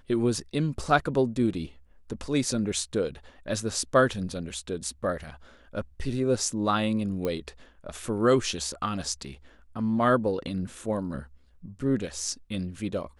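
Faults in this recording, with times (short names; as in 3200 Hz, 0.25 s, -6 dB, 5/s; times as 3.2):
7.25 pop -17 dBFS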